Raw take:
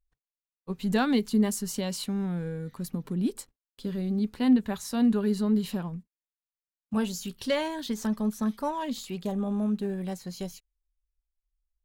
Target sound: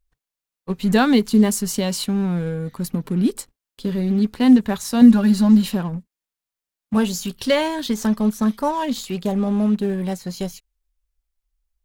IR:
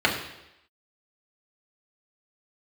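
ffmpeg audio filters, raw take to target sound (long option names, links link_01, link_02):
-filter_complex "[0:a]asettb=1/sr,asplit=3[link_01][link_02][link_03];[link_01]atrim=end=5.014[link_04];[link_02]atrim=start=5.01:end=5.69,asetpts=PTS-STARTPTS,afade=type=in:duration=0.004:curve=qsin,afade=type=out:start_time=0.676:duration=0.004:curve=qsin,aecho=1:1:3.6:0.86,atrim=end_sample=29988[link_05];[link_03]atrim=start=5.686[link_06];[link_04][link_05]acrossfade=duration=0.004:curve1=hsin:curve2=qsin[link_07];[link_07][link_06]acrossfade=duration=0.004:curve1=qsin:curve2=hsin,asplit=2[link_08][link_09];[link_09]acrusher=bits=5:mix=0:aa=0.5,volume=-12dB[link_10];[link_08][link_10]amix=inputs=2:normalize=0,volume=7dB"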